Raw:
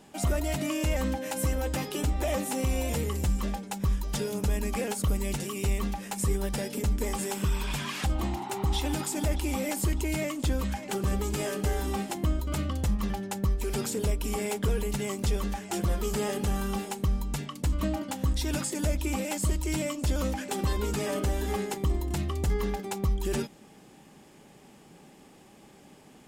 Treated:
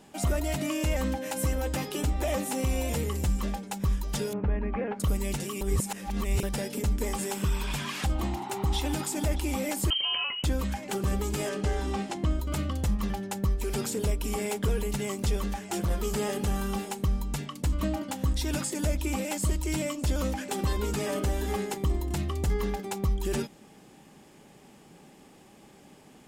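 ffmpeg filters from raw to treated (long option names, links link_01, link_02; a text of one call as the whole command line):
ffmpeg -i in.wav -filter_complex "[0:a]asettb=1/sr,asplit=3[link_01][link_02][link_03];[link_01]atrim=end=4.334[link_04];[link_02]atrim=start=4.33:end=5,asetpts=PTS-STARTPTS,afade=type=in:duration=0.004:curve=qsin,afade=type=out:start_time=0.666:duration=0.004:curve=qsin,lowpass=frequency=2100:width=0.5412,lowpass=frequency=2100:width=1.3066[link_05];[link_03]atrim=start=4.996[link_06];[link_04][link_05]acrossfade=duration=0.004:curve1=hsin:curve2=qsin[link_07];[link_07][link_06]acrossfade=duration=0.004:curve1=qsin:curve2=hsin,asettb=1/sr,asplit=3[link_08][link_09][link_10];[link_08]atrim=end=9.904[link_11];[link_09]atrim=start=9.9:end=10.44,asetpts=PTS-STARTPTS,afade=type=in:duration=0.004:curve=qsin,afade=type=out:start_time=0.536:duration=0.004:curve=qsin,lowpass=frequency=2700:width_type=q:width=0.5098,lowpass=frequency=2700:width_type=q:width=0.6013,lowpass=frequency=2700:width_type=q:width=0.9,lowpass=frequency=2700:width_type=q:width=2.563,afreqshift=-3200[link_12];[link_10]atrim=start=10.436[link_13];[link_11][link_12]acrossfade=duration=0.004:curve1=hsin:curve2=qsin[link_14];[link_14][link_13]acrossfade=duration=0.004:curve1=qsin:curve2=hsin,asettb=1/sr,asplit=3[link_15][link_16][link_17];[link_15]atrim=end=11.494[link_18];[link_16]atrim=start=11.49:end=12.31,asetpts=PTS-STARTPTS,afade=type=in:duration=0.004:curve=qsin,afade=type=out:start_time=0.816:duration=0.004:curve=qsin,lowpass=6800[link_19];[link_17]atrim=start=12.306[link_20];[link_18][link_19]acrossfade=duration=0.004:curve1=hsin:curve2=qsin[link_21];[link_21][link_20]acrossfade=duration=0.004:curve1=qsin:curve2=hsin,asplit=3[link_22][link_23][link_24];[link_22]afade=type=out:start_time=15.38:duration=0.02[link_25];[link_23]asoftclip=type=hard:threshold=-23dB,afade=type=in:start_time=15.38:duration=0.02,afade=type=out:start_time=15.89:duration=0.02[link_26];[link_24]afade=type=in:start_time=15.89:duration=0.02[link_27];[link_25][link_26][link_27]amix=inputs=3:normalize=0,asplit=3[link_28][link_29][link_30];[link_28]atrim=end=5.612[link_31];[link_29]atrim=start=5.608:end=6.432,asetpts=PTS-STARTPTS,areverse[link_32];[link_30]atrim=start=6.428[link_33];[link_31][link_32]acrossfade=duration=0.004:curve1=hsin:curve2=hsin[link_34];[link_34][link_33]acrossfade=duration=0.004:curve1=hsin:curve2=hsin" out.wav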